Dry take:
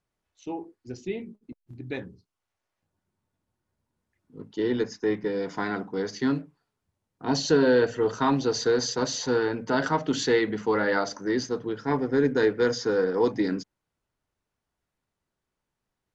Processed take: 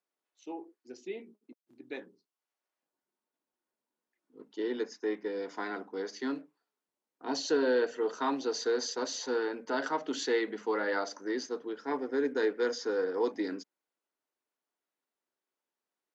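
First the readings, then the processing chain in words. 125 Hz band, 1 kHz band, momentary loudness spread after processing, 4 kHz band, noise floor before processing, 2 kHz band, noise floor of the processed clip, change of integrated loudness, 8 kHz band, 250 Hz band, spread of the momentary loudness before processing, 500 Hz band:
under -25 dB, -6.5 dB, 15 LU, -6.5 dB, -85 dBFS, -6.5 dB, under -85 dBFS, -7.0 dB, no reading, -9.0 dB, 14 LU, -6.5 dB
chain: high-pass 270 Hz 24 dB/octave; trim -6.5 dB

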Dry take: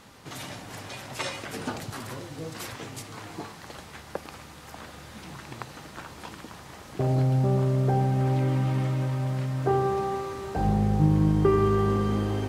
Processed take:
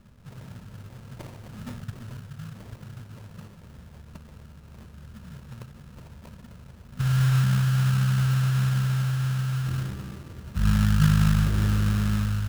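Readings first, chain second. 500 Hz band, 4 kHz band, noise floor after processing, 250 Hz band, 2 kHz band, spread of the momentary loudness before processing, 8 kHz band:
-19.0 dB, +2.0 dB, -48 dBFS, -1.5 dB, +2.5 dB, 20 LU, +2.0 dB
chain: FFT band-reject 250–880 Hz; tilt EQ -3.5 dB/octave; sample-rate reducer 1.5 kHz, jitter 20%; trim -7.5 dB

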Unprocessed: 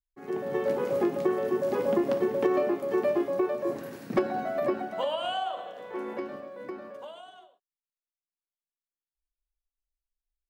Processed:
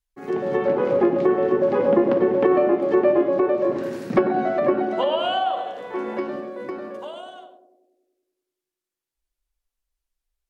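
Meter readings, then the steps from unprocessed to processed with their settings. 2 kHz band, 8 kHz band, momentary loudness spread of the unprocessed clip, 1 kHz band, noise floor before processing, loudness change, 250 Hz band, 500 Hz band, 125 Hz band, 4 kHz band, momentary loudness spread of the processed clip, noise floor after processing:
+7.0 dB, no reading, 14 LU, +8.5 dB, under -85 dBFS, +8.0 dB, +8.5 dB, +8.0 dB, +8.0 dB, +6.5 dB, 14 LU, under -85 dBFS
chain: low-pass that closes with the level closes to 2.4 kHz, closed at -23.5 dBFS; band-passed feedback delay 96 ms, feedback 71%, band-pass 350 Hz, level -7 dB; trim +7.5 dB

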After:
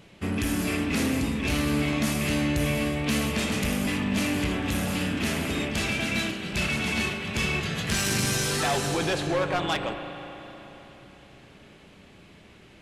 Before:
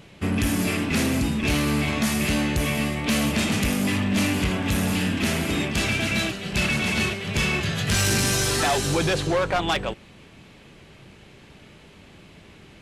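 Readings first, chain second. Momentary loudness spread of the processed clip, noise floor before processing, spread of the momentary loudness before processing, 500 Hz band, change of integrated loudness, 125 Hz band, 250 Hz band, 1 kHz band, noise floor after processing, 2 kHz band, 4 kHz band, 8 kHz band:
4 LU, -49 dBFS, 4 LU, -2.5 dB, -3.5 dB, -4.0 dB, -3.0 dB, -3.0 dB, -52 dBFS, -3.0 dB, -3.5 dB, -4.0 dB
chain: hum notches 50/100/150 Hz; spring tank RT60 3.7 s, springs 34/40 ms, chirp 60 ms, DRR 6 dB; trim -4 dB

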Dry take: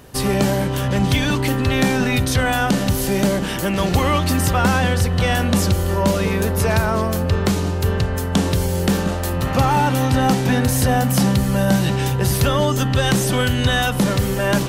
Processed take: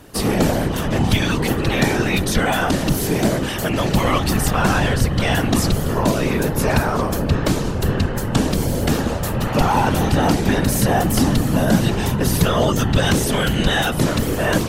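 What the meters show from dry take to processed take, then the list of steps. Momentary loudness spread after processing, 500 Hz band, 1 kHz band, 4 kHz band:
4 LU, 0.0 dB, -0.5 dB, 0.0 dB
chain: whisper effect

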